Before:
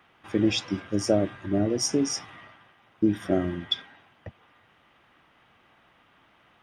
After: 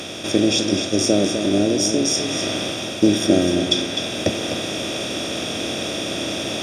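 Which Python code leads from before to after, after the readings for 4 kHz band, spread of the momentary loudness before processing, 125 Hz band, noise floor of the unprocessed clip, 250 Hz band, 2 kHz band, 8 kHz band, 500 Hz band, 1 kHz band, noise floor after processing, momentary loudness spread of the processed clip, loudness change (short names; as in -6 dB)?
+12.5 dB, 6 LU, +5.5 dB, -62 dBFS, +8.0 dB, +13.0 dB, +11.5 dB, +8.5 dB, +9.5 dB, -28 dBFS, 7 LU, +6.5 dB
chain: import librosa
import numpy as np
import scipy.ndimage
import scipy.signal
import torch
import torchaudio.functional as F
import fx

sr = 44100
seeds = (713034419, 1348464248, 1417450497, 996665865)

p1 = fx.bin_compress(x, sr, power=0.4)
p2 = fx.high_shelf(p1, sr, hz=2400.0, db=9.0)
p3 = fx.rider(p2, sr, range_db=5, speed_s=0.5)
p4 = fx.dynamic_eq(p3, sr, hz=300.0, q=0.74, threshold_db=-31.0, ratio=4.0, max_db=5)
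y = p4 + fx.echo_single(p4, sr, ms=254, db=-7.5, dry=0)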